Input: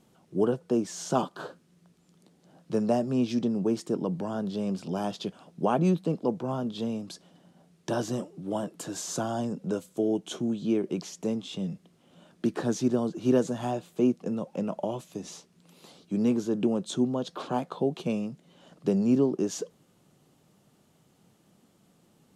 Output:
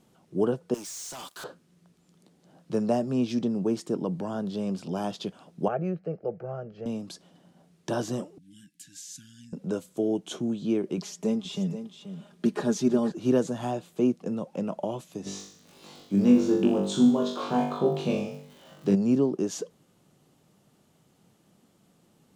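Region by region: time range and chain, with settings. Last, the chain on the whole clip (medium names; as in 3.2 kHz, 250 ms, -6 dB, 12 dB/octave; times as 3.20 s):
0.74–1.44 s: pre-emphasis filter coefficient 0.97 + compression 3:1, threshold -47 dBFS + waveshaping leveller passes 5
5.68–6.86 s: distance through air 250 m + static phaser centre 980 Hz, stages 6
8.38–9.53 s: Chebyshev band-stop 300–1600 Hz, order 5 + amplifier tone stack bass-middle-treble 5-5-5
10.97–13.12 s: comb 4.9 ms, depth 61% + delay 480 ms -11 dB
15.25–18.94 s: low-pass 8.2 kHz + crackle 79 per s -44 dBFS + flutter echo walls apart 3.5 m, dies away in 0.61 s
whole clip: none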